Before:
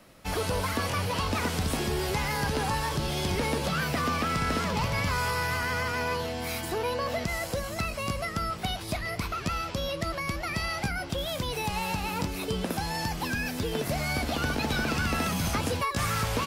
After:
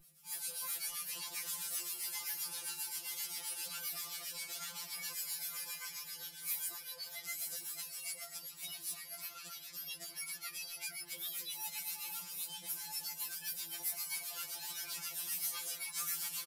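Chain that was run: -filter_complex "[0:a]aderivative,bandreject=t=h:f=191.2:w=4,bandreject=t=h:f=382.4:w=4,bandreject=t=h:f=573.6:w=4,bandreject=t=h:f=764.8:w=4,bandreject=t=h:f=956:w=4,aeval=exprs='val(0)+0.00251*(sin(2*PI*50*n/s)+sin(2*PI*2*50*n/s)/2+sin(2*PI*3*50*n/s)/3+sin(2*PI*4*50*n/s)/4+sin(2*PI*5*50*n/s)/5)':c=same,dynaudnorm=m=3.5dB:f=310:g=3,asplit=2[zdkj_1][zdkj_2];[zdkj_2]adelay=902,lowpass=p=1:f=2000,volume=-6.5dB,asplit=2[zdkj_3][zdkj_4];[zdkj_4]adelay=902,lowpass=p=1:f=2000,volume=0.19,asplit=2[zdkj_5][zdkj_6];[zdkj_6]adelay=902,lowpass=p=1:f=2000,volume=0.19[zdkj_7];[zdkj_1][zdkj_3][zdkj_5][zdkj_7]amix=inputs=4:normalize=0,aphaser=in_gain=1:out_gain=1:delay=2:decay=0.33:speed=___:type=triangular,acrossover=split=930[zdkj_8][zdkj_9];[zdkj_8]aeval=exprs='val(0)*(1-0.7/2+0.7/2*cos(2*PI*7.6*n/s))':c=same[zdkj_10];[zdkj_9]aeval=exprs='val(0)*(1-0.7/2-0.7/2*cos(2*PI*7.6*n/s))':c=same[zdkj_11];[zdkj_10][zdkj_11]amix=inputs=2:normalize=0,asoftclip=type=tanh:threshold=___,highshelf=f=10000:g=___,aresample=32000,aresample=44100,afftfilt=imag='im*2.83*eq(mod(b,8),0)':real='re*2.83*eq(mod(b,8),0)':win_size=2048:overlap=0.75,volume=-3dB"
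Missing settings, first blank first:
0.8, -29.5dB, 11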